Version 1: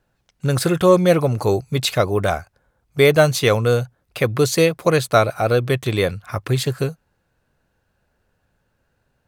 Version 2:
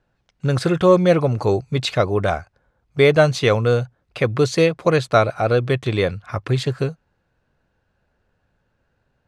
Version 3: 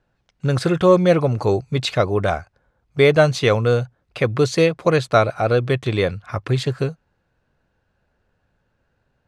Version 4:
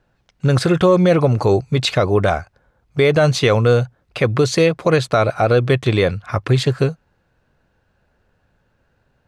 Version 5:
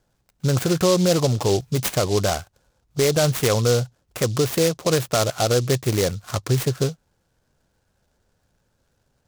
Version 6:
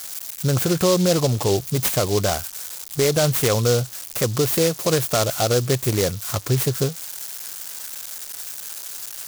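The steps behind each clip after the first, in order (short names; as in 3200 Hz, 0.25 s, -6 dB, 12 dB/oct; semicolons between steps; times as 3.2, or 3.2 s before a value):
air absorption 87 m
nothing audible
limiter -10.5 dBFS, peak gain reduction 8.5 dB; gain +5 dB
noise-modulated delay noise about 4800 Hz, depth 0.091 ms; gain -5 dB
switching spikes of -22 dBFS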